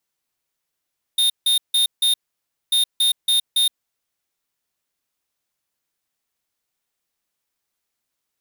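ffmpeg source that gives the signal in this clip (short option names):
-f lavfi -i "aevalsrc='0.141*(2*lt(mod(3660*t,1),0.5)-1)*clip(min(mod(mod(t,1.54),0.28),0.12-mod(mod(t,1.54),0.28))/0.005,0,1)*lt(mod(t,1.54),1.12)':d=3.08:s=44100"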